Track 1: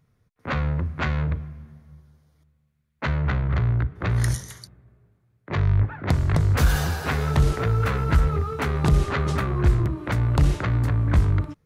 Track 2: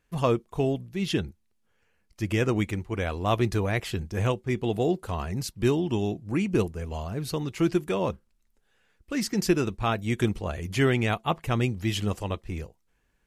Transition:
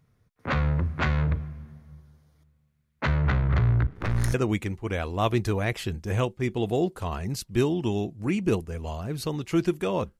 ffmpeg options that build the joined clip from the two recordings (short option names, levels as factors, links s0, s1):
-filter_complex "[0:a]asettb=1/sr,asplit=3[s0][s1][s2];[s0]atrim=end=3.864[s3];[s1]atrim=start=3.86:end=4.34,asetpts=PTS-STARTPTS,afade=t=in:d=0.004:c=qsin,afade=t=out:st=0.476:d=0.004:c=qsin,aeval=exprs='if(lt(val(0),0),0.251*val(0),val(0))':c=same[s4];[s2]atrim=start=4.336[s5];[s3][s4]acrossfade=d=0.004:c1=hsin:c2=qsin[s6];[s6][s5]acrossfade=d=0.004:c1=qsin:c2=hsin,apad=whole_dur=10.19,atrim=end=10.19,atrim=end=4.342[s7];[1:a]atrim=start=2.408:end=8.26[s8];[s7][s8]acrossfade=d=0.004:c1=hsin:c2=hsin"